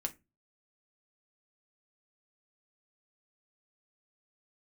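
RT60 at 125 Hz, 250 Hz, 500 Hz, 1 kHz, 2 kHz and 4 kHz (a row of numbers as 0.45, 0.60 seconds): 0.45, 0.35, 0.25, 0.20, 0.20, 0.15 seconds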